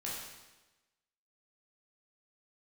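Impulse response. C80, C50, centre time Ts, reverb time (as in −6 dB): 3.0 dB, 0.0 dB, 73 ms, 1.1 s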